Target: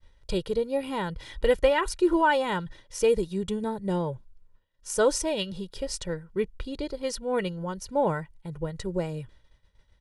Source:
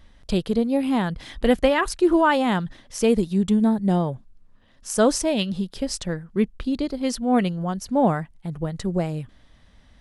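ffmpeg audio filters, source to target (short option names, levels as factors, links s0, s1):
-af "aecho=1:1:2.1:0.7,agate=range=0.0224:threshold=0.00891:ratio=3:detection=peak,volume=0.531"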